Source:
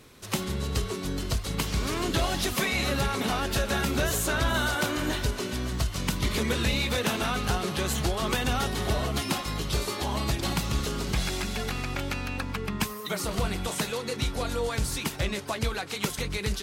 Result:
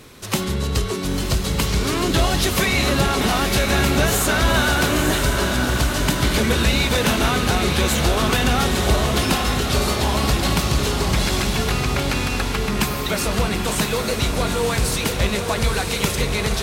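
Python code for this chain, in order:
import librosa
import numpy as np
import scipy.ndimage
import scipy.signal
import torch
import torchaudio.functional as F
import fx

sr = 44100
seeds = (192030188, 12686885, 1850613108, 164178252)

p1 = 10.0 ** (-28.5 / 20.0) * np.tanh(x / 10.0 ** (-28.5 / 20.0))
p2 = x + F.gain(torch.from_numpy(p1), -5.0).numpy()
p3 = fx.echo_diffused(p2, sr, ms=964, feedback_pct=57, wet_db=-5.0)
y = F.gain(torch.from_numpy(p3), 5.0).numpy()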